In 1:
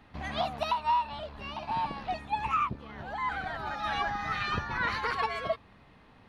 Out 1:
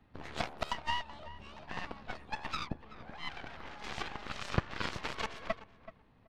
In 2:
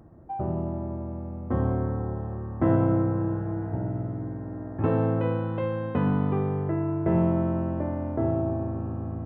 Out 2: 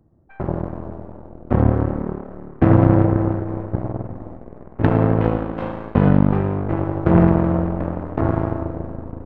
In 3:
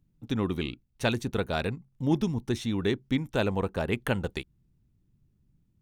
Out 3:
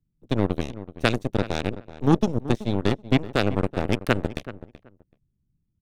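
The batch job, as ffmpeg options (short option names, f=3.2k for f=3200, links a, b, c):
-filter_complex "[0:a]lowshelf=f=430:g=7.5,acrossover=split=260[a][b];[b]acompressor=threshold=-23dB:ratio=2[c];[a][c]amix=inputs=2:normalize=0,asplit=2[d][e];[e]volume=24dB,asoftclip=hard,volume=-24dB,volume=-9dB[f];[d][f]amix=inputs=2:normalize=0,aeval=exprs='0.562*(cos(1*acos(clip(val(0)/0.562,-1,1)))-cos(1*PI/2))+0.0794*(cos(6*acos(clip(val(0)/0.562,-1,1)))-cos(6*PI/2))+0.0891*(cos(7*acos(clip(val(0)/0.562,-1,1)))-cos(7*PI/2))+0.0631*(cos(8*acos(clip(val(0)/0.562,-1,1)))-cos(8*PI/2))':c=same,asplit=2[g][h];[h]adelay=379,lowpass=f=1.8k:p=1,volume=-14.5dB,asplit=2[i][j];[j]adelay=379,lowpass=f=1.8k:p=1,volume=0.18[k];[g][i][k]amix=inputs=3:normalize=0,volume=3.5dB"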